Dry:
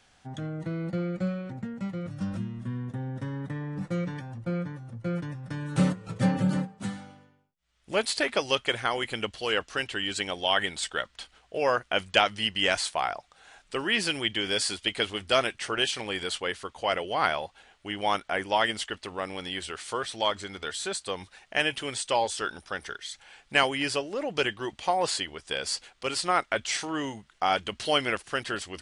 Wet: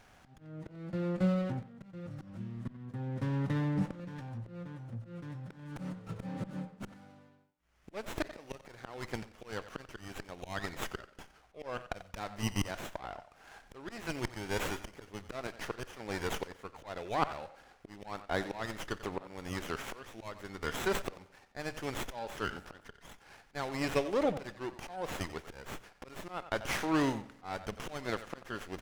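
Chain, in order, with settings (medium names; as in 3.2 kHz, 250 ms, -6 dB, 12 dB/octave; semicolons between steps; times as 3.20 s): slow attack 764 ms; speakerphone echo 90 ms, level -13 dB; on a send at -17.5 dB: reverberation RT60 1.0 s, pre-delay 44 ms; on the sum: sliding maximum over 9 samples; trim +3 dB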